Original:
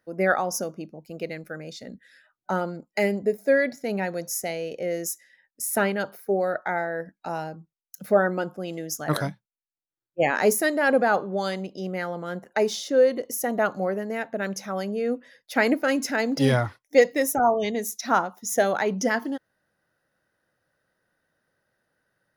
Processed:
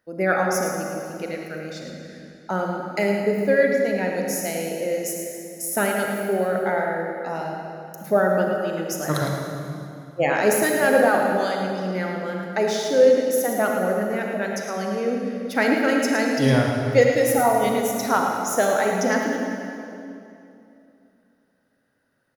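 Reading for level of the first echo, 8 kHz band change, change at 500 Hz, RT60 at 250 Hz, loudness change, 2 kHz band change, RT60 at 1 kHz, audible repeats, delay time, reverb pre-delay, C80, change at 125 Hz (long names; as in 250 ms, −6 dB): −7.5 dB, +2.5 dB, +3.5 dB, 3.2 s, +3.0 dB, +2.5 dB, 2.6 s, 1, 109 ms, 34 ms, 1.5 dB, +4.0 dB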